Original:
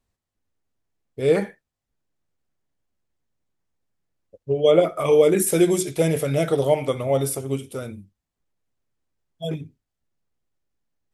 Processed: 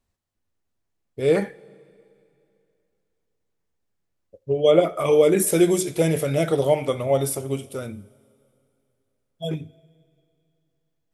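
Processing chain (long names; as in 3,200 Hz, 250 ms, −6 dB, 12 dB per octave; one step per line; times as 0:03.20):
coupled-rooms reverb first 0.22 s, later 2.7 s, from −18 dB, DRR 15.5 dB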